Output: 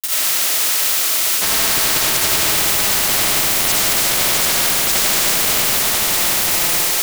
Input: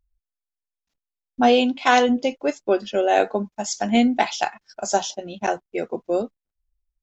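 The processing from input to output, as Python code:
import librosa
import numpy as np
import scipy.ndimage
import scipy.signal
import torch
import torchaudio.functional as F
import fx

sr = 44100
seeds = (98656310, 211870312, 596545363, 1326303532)

y = fx.reverse_delay(x, sr, ms=423, wet_db=-0.5)
y = scipy.signal.sosfilt(scipy.signal.butter(4, 770.0, 'highpass', fs=sr, output='sos'), y)
y = y * np.sin(2.0 * np.pi * 1400.0 * np.arange(len(y)) / sr)
y = fx.dmg_noise_colour(y, sr, seeds[0], colour='blue', level_db=-43.0)
y = fx.granulator(y, sr, seeds[1], grain_ms=100.0, per_s=20.0, spray_ms=100.0, spread_st=0)
y = fx.rev_freeverb(y, sr, rt60_s=0.7, hf_ratio=0.8, predelay_ms=40, drr_db=-9.5)
y = fx.spectral_comp(y, sr, ratio=10.0)
y = y * librosa.db_to_amplitude(-1.0)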